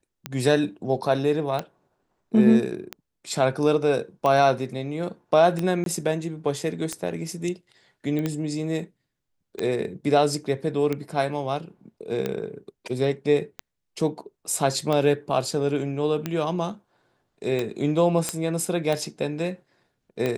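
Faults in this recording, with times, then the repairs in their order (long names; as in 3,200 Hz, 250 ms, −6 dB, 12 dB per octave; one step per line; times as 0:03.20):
scratch tick 45 rpm −13 dBFS
0:05.84–0:05.86: drop-out 22 ms
0:08.19: click −18 dBFS
0:18.29: click −9 dBFS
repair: click removal
repair the gap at 0:05.84, 22 ms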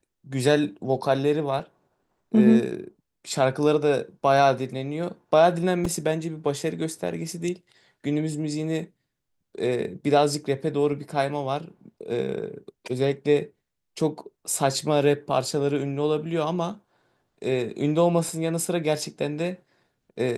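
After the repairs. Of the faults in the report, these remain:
0:08.19: click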